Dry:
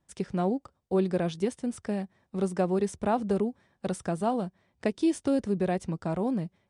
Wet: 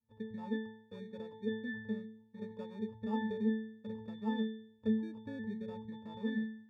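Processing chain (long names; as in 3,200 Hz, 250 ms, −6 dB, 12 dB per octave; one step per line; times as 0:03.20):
gate on every frequency bin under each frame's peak −30 dB strong
decimation without filtering 22×
resonances in every octave A, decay 0.63 s
level +9 dB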